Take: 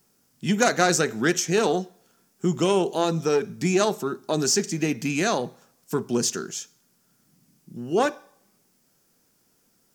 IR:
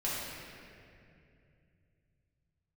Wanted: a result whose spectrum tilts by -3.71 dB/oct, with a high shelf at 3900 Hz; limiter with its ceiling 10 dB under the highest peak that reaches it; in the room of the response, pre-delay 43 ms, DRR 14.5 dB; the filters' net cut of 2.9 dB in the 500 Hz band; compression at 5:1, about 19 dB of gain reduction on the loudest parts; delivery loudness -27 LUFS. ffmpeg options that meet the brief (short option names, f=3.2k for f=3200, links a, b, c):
-filter_complex "[0:a]equalizer=f=500:t=o:g=-4,highshelf=f=3.9k:g=9,acompressor=threshold=-36dB:ratio=5,alimiter=level_in=5dB:limit=-24dB:level=0:latency=1,volume=-5dB,asplit=2[a][b];[1:a]atrim=start_sample=2205,adelay=43[c];[b][c]afir=irnorm=-1:irlink=0,volume=-21dB[d];[a][d]amix=inputs=2:normalize=0,volume=13.5dB"